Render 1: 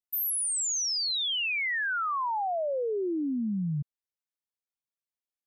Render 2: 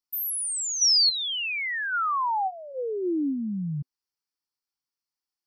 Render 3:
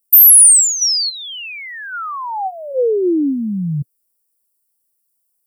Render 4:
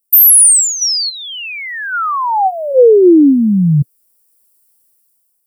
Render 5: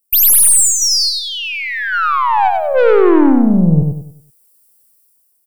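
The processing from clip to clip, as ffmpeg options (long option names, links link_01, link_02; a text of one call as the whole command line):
ffmpeg -i in.wav -af "superequalizer=6b=1.58:8b=0.282:9b=1.58:10b=1.58:14b=3.16" out.wav
ffmpeg -i in.wav -af "equalizer=frequency=125:width_type=o:width=1:gain=4,equalizer=frequency=500:width_type=o:width=1:gain=10,equalizer=frequency=1000:width_type=o:width=1:gain=-7,equalizer=frequency=2000:width_type=o:width=1:gain=-6,equalizer=frequency=4000:width_type=o:width=1:gain=-7,equalizer=frequency=8000:width_type=o:width=1:gain=6,aexciter=amount=4.3:drive=7.8:freq=8400,volume=7dB" out.wav
ffmpeg -i in.wav -af "dynaudnorm=framelen=260:gausssize=7:maxgain=14.5dB" out.wav
ffmpeg -i in.wav -filter_complex "[0:a]aeval=exprs='(tanh(3.55*val(0)+0.3)-tanh(0.3))/3.55':channel_layout=same,asplit=2[link_01][link_02];[link_02]aecho=0:1:96|192|288|384|480:0.631|0.227|0.0818|0.0294|0.0106[link_03];[link_01][link_03]amix=inputs=2:normalize=0,volume=2dB" out.wav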